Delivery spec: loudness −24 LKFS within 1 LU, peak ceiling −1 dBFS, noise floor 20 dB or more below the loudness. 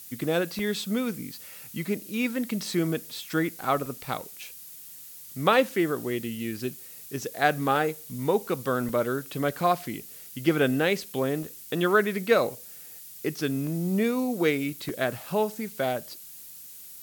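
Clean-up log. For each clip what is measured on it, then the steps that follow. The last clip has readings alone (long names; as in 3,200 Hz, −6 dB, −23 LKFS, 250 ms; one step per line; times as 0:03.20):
number of dropouts 8; longest dropout 1.8 ms; background noise floor −45 dBFS; target noise floor −48 dBFS; integrated loudness −27.5 LKFS; sample peak −6.0 dBFS; target loudness −24.0 LKFS
→ repair the gap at 0:00.59/0:03.86/0:06.57/0:07.76/0:08.89/0:11.43/0:13.67/0:14.89, 1.8 ms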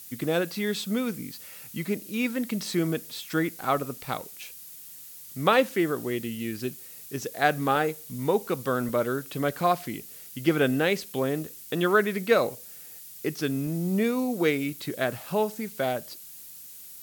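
number of dropouts 0; background noise floor −45 dBFS; target noise floor −48 dBFS
→ broadband denoise 6 dB, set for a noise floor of −45 dBFS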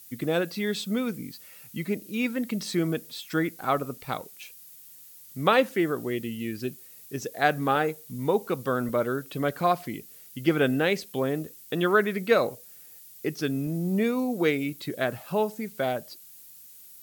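background noise floor −49 dBFS; integrated loudness −27.5 LKFS; sample peak −6.5 dBFS; target loudness −24.0 LKFS
→ level +3.5 dB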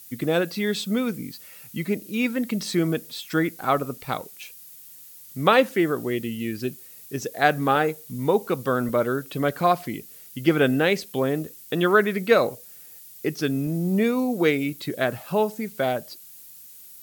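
integrated loudness −24.0 LKFS; sample peak −3.0 dBFS; background noise floor −46 dBFS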